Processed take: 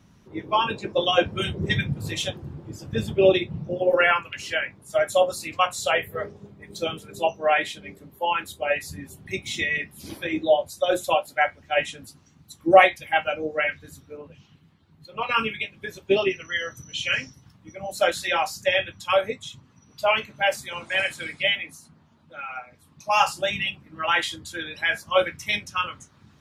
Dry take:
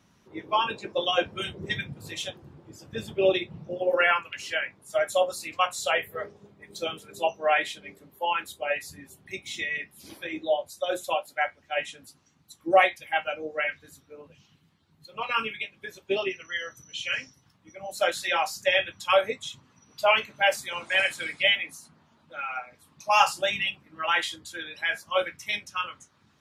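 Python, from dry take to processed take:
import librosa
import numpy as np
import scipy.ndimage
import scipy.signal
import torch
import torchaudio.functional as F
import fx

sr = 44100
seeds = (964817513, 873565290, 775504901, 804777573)

y = fx.bass_treble(x, sr, bass_db=-4, treble_db=-6, at=(14.17, 15.29))
y = fx.rider(y, sr, range_db=4, speed_s=2.0)
y = fx.low_shelf(y, sr, hz=240.0, db=10.5)
y = F.gain(torch.from_numpy(y), 2.0).numpy()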